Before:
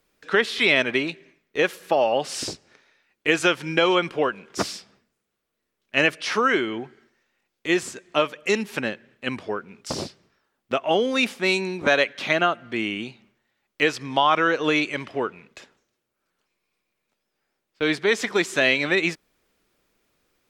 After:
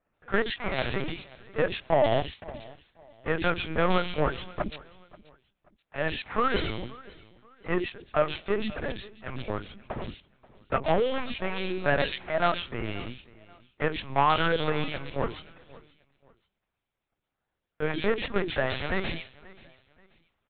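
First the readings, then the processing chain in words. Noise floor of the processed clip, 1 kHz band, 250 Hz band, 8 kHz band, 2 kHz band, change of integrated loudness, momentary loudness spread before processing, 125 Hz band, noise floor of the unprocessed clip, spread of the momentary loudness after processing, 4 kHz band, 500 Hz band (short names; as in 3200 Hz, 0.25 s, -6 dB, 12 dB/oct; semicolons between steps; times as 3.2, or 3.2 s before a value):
-84 dBFS, -3.5 dB, -6.5 dB, under -40 dB, -9.0 dB, -6.5 dB, 13 LU, +2.5 dB, -79 dBFS, 14 LU, -8.5 dB, -5.0 dB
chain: switching dead time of 0.19 ms; three bands offset in time mids, lows, highs 60/130 ms, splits 310/2400 Hz; LPC vocoder at 8 kHz pitch kept; on a send: feedback echo 0.532 s, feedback 32%, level -21.5 dB; on the sum: gain -1 dB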